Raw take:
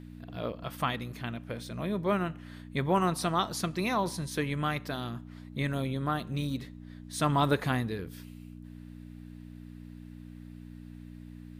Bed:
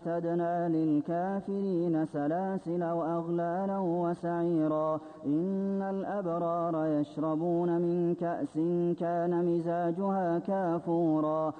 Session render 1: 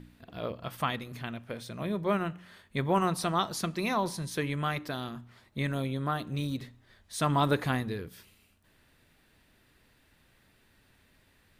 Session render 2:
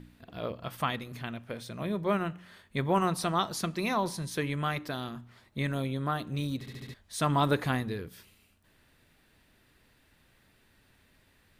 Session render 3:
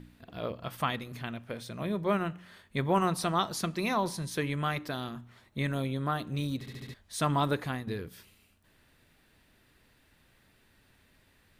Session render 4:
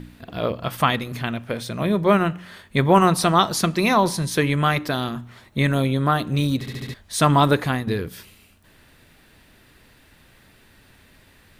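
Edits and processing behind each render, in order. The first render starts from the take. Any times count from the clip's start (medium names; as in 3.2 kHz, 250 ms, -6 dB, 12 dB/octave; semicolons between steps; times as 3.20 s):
de-hum 60 Hz, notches 5
6.59 s: stutter in place 0.07 s, 5 plays
5.14–5.74 s: band-stop 4.8 kHz; 7.17–7.87 s: fade out, to -7.5 dB
trim +11.5 dB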